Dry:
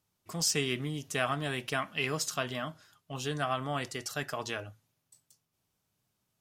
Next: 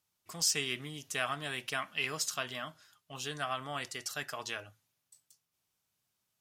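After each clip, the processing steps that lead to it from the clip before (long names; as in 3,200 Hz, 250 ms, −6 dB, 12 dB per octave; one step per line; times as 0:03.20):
tilt shelving filter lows −5 dB, about 770 Hz
level −5 dB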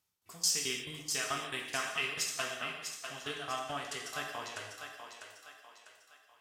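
shaped tremolo saw down 4.6 Hz, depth 95%
feedback echo with a high-pass in the loop 648 ms, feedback 44%, high-pass 360 Hz, level −7 dB
reverb whose tail is shaped and stops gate 340 ms falling, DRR 0.5 dB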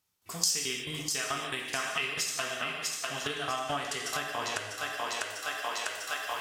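camcorder AGC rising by 29 dB per second
level +1.5 dB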